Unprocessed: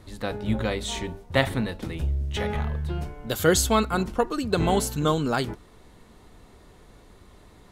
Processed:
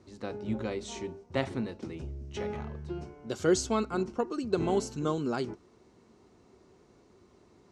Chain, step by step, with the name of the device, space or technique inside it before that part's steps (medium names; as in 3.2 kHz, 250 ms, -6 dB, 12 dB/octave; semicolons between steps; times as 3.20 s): car door speaker (cabinet simulation 90–7600 Hz, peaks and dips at 240 Hz +4 dB, 370 Hz +9 dB, 1.8 kHz -5 dB, 3.5 kHz -7 dB, 5.7 kHz +5 dB); trim -9 dB